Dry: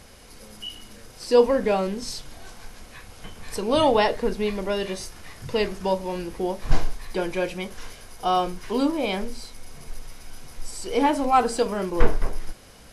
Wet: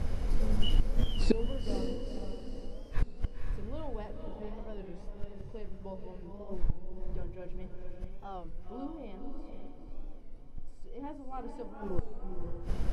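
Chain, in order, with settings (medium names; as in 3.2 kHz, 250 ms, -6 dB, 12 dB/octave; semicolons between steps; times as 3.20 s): tilt EQ -4 dB/octave; hum notches 60/120/180/240/300/360 Hz; reverse; compression 6:1, threshold -11 dBFS, peak gain reduction 23.5 dB; reverse; inverted gate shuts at -17 dBFS, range -27 dB; on a send: echo that smears into a reverb 492 ms, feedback 46%, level -5 dB; on the sum: warped record 33 1/3 rpm, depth 160 cents; trim +3.5 dB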